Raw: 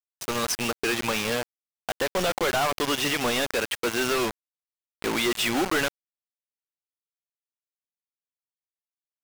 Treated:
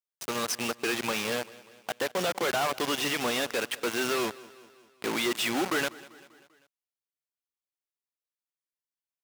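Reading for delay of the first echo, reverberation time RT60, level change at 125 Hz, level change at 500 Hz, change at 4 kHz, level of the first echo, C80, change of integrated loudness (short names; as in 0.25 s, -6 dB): 0.196 s, none, -6.5 dB, -3.5 dB, -3.5 dB, -20.5 dB, none, -3.5 dB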